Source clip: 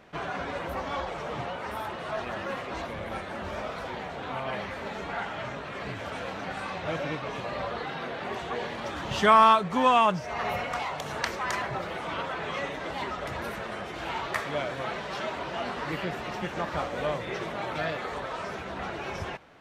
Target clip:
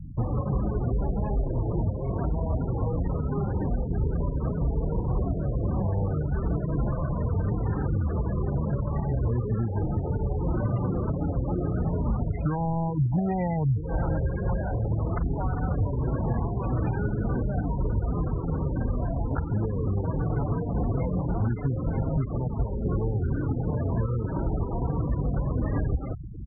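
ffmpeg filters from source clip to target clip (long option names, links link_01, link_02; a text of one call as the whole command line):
ffmpeg -i in.wav -filter_complex "[0:a]acrossover=split=350|2800[link_01][link_02][link_03];[link_01]acompressor=threshold=-45dB:ratio=4[link_04];[link_02]acompressor=threshold=-41dB:ratio=4[link_05];[link_03]acompressor=threshold=-58dB:ratio=4[link_06];[link_04][link_05][link_06]amix=inputs=3:normalize=0,lowshelf=frequency=110:gain=8,aecho=1:1:970:0.158,asetrate=32667,aresample=44100,bass=frequency=250:gain=14,treble=frequency=4000:gain=0,alimiter=level_in=0.5dB:limit=-24dB:level=0:latency=1:release=263,volume=-0.5dB,afftfilt=real='re*gte(hypot(re,im),0.0178)':imag='im*gte(hypot(re,im),0.0178)':win_size=1024:overlap=0.75,volume=7.5dB" out.wav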